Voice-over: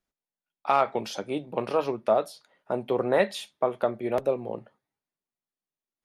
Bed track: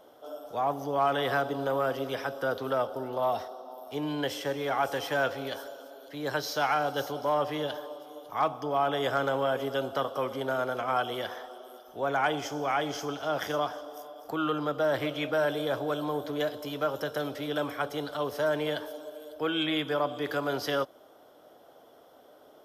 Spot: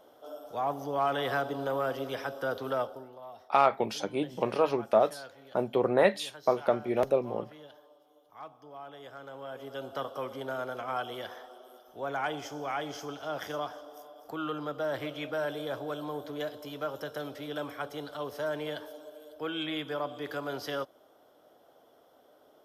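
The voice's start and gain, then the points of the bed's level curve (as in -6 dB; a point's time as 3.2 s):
2.85 s, -0.5 dB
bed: 2.82 s -2.5 dB
3.21 s -18.5 dB
9.19 s -18.5 dB
9.99 s -5.5 dB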